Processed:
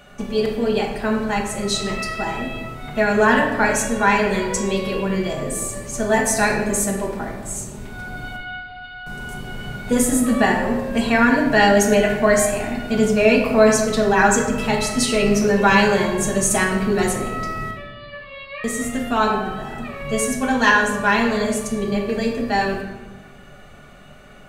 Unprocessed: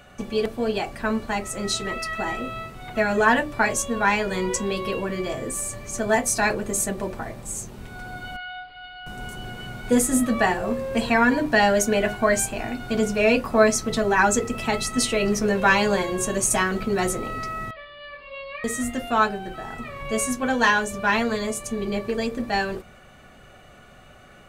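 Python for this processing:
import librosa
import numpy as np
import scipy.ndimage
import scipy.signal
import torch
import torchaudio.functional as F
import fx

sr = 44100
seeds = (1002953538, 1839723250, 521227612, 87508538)

y = fx.room_shoebox(x, sr, seeds[0], volume_m3=750.0, walls='mixed', distance_m=1.3)
y = F.gain(torch.from_numpy(y), 1.0).numpy()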